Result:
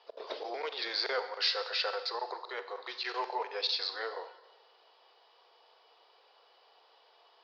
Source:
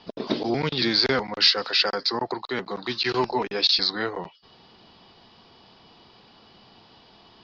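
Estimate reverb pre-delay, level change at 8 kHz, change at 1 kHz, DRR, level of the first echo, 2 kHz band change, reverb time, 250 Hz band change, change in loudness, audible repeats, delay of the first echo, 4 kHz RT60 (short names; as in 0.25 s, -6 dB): 25 ms, n/a, -7.5 dB, 10.0 dB, none, -9.5 dB, 1.1 s, -24.5 dB, -11.0 dB, none, none, 1.0 s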